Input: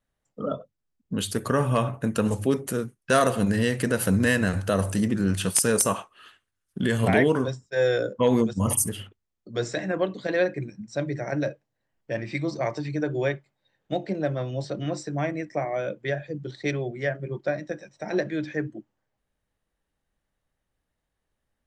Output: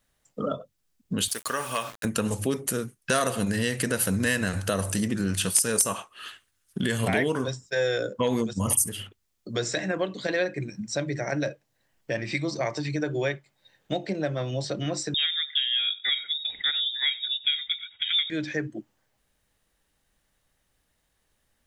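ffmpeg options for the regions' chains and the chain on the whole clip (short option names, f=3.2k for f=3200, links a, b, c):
-filter_complex "[0:a]asettb=1/sr,asplit=3[a][b][c];[a]atrim=end=1.284[d];[b]atrim=start=1.28:end=2.05,asetpts=PTS-STARTPTS,afade=t=in:d=0.004:c=qsin,afade=t=out:st=0.766:d=0.004:c=qsin,highpass=f=1.2k:p=1,aeval=exprs='val(0)*gte(abs(val(0)),0.00668)':c=same[e];[c]atrim=start=2.046[f];[d][e]acrossfade=d=0.004:c1=hsin:c2=qsin[g];[g][f]acrossfade=d=0.004:c1=qsin:c2=hsin,asettb=1/sr,asplit=3[h][i][j];[h]atrim=end=15.144[k];[i]atrim=start=15.14:end=18.3,asetpts=PTS-STARTPTS,afade=t=in:d=0.004:c=qsin,afade=t=out:st=3.156:d=0.004:c=qsin,highpass=f=250:p=1,aecho=1:1:93:0.0794,atrim=end_sample=139356,lowpass=f=3.3k:t=q:w=0.5098,lowpass=f=3.3k:t=q:w=0.6013,lowpass=f=3.3k:t=q:w=0.9,lowpass=f=3.3k:t=q:w=2.563,afreqshift=-3900[l];[j]atrim=start=18.296[m];[k][l]acrossfade=d=0.004:c1=hsin:c2=qsin[n];[n][m]acrossfade=d=0.004:c1=qsin:c2=hsin,highshelf=f=2.1k:g=9,acompressor=threshold=-36dB:ratio=2,volume=5.5dB"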